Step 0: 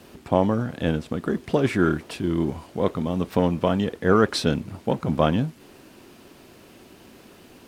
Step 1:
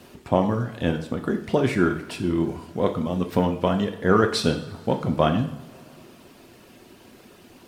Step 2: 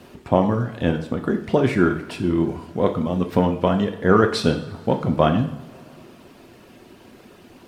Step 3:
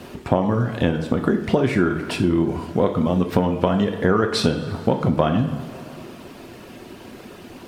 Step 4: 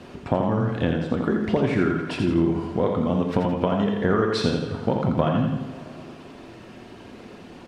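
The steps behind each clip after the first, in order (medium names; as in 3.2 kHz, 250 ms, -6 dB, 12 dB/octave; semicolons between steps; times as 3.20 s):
reverb removal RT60 0.64 s; two-slope reverb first 0.62 s, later 3 s, from -20 dB, DRR 5 dB
treble shelf 3.9 kHz -6.5 dB; trim +3 dB
compression 5:1, threshold -22 dBFS, peak gain reduction 11 dB; trim +7 dB
distance through air 60 m; feedback delay 84 ms, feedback 43%, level -5 dB; trim -4 dB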